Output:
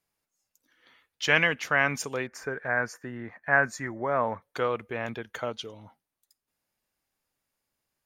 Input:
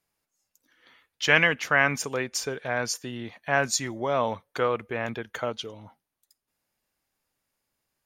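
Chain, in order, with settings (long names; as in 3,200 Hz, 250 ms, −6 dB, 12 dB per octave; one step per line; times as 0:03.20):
0:02.27–0:04.42: high shelf with overshoot 2,400 Hz −11 dB, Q 3
level −2.5 dB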